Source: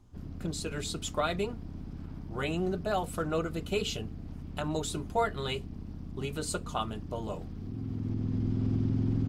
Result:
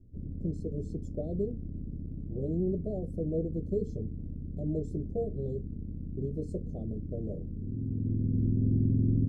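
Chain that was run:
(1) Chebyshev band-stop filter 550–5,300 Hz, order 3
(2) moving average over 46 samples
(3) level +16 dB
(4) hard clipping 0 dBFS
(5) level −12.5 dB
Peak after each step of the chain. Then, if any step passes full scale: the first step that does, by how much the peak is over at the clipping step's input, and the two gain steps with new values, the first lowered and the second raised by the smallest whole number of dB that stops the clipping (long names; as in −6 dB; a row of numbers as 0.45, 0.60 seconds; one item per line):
−20.0, −20.5, −4.5, −4.5, −17.0 dBFS
no step passes full scale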